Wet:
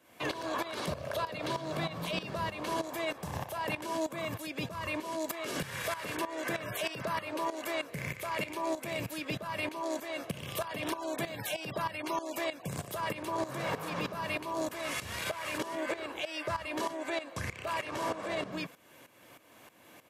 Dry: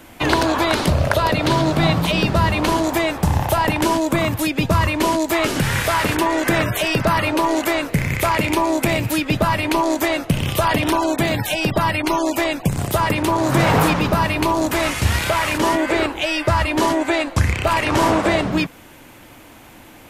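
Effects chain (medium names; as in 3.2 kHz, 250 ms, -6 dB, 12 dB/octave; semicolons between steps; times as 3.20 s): high-pass 170 Hz 12 dB/octave; comb 1.8 ms, depth 35%; peak limiter -14 dBFS, peak gain reduction 10.5 dB; tremolo saw up 3.2 Hz, depth 80%; trim -9 dB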